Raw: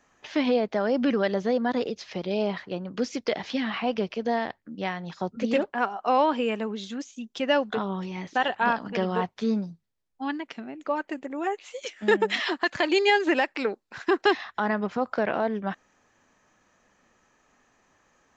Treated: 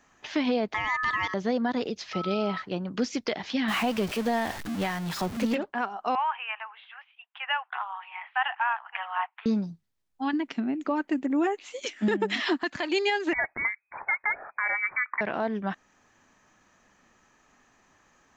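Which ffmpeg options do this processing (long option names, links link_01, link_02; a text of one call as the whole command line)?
ffmpeg -i in.wav -filter_complex "[0:a]asettb=1/sr,asplit=3[link_01][link_02][link_03];[link_01]atrim=end=0.744[link_04];[link_02]atrim=start=0.74:end=1.34,asetpts=PTS-STARTPTS,afade=type=in:duration=0.004:curve=qsin,afade=type=out:start_time=0.596:duration=0.004:curve=qsin,aeval=exprs='val(0)*sin(2*PI*1500*n/s)':channel_layout=same[link_05];[link_03]atrim=start=1.336[link_06];[link_04][link_05]acrossfade=duration=0.004:curve1=hsin:curve2=qsin[link_07];[link_07][link_06]acrossfade=duration=0.004:curve1=qsin:curve2=hsin,asettb=1/sr,asplit=3[link_08][link_09][link_10];[link_08]atrim=end=2.134[link_11];[link_09]atrim=start=2.13:end=2.62,asetpts=PTS-STARTPTS,afade=type=in:duration=0.004:curve=qsin,afade=type=out:start_time=0.486:duration=0.004:curve=qsin,aeval=exprs='val(0)+0.0178*sin(2*PI*1300*n/s)':channel_layout=same[link_12];[link_10]atrim=start=2.616[link_13];[link_11][link_12]acrossfade=duration=0.004:curve1=hsin:curve2=qsin[link_14];[link_14][link_13]acrossfade=duration=0.004:curve1=qsin:curve2=hsin,asettb=1/sr,asplit=3[link_15][link_16][link_17];[link_15]atrim=end=3.684[link_18];[link_16]atrim=start=3.68:end=5.55,asetpts=PTS-STARTPTS,afade=type=in:duration=0.004:curve=qsin,afade=type=out:start_time=1.866:duration=0.004:curve=qsin,aeval=exprs='val(0)+0.5*0.0251*sgn(val(0))':channel_layout=same[link_19];[link_17]atrim=start=5.546[link_20];[link_18][link_19]acrossfade=duration=0.004:curve1=hsin:curve2=qsin[link_21];[link_21][link_20]acrossfade=duration=0.004:curve1=qsin:curve2=hsin,asettb=1/sr,asplit=3[link_22][link_23][link_24];[link_22]atrim=end=6.154[link_25];[link_23]atrim=start=6.15:end=9.46,asetpts=PTS-STARTPTS,afade=type=in:duration=0.004:curve=qsin,afade=type=out:start_time=3.306:duration=0.004:curve=qsin,asuperpass=centerf=1500:order=12:qfactor=0.7[link_26];[link_24]atrim=start=9.456[link_27];[link_25][link_26]acrossfade=duration=0.004:curve1=hsin:curve2=qsin[link_28];[link_28][link_27]acrossfade=duration=0.004:curve1=qsin:curve2=hsin,asettb=1/sr,asplit=3[link_29][link_30][link_31];[link_29]atrim=end=10.334[link_32];[link_30]atrim=start=10.33:end=12.79,asetpts=PTS-STARTPTS,afade=type=in:duration=0.004:curve=qsin,afade=type=out:start_time=2.456:duration=0.004:curve=qsin,equalizer=frequency=260:width=1.5:gain=9.5[link_33];[link_31]atrim=start=12.786[link_34];[link_32][link_33]acrossfade=duration=0.004:curve1=hsin:curve2=qsin[link_35];[link_35][link_34]acrossfade=duration=0.004:curve1=qsin:curve2=hsin,asettb=1/sr,asplit=3[link_36][link_37][link_38];[link_36]atrim=end=13.334[link_39];[link_37]atrim=start=13.33:end=15.21,asetpts=PTS-STARTPTS,afade=type=in:duration=0.004:curve=qsin,afade=type=out:start_time=1.876:duration=0.004:curve=qsin,lowpass=frequency=2100:width_type=q:width=0.5098,lowpass=frequency=2100:width_type=q:width=0.6013,lowpass=frequency=2100:width_type=q:width=0.9,lowpass=frequency=2100:width_type=q:width=2.563,afreqshift=-2500[link_40];[link_38]atrim=start=15.206[link_41];[link_39][link_40]acrossfade=duration=0.004:curve1=hsin:curve2=qsin[link_42];[link_42][link_41]acrossfade=duration=0.004:curve1=qsin:curve2=hsin,equalizer=frequency=510:width_type=o:width=0.59:gain=-4.5,alimiter=limit=-19.5dB:level=0:latency=1:release=370,volume=2.5dB" out.wav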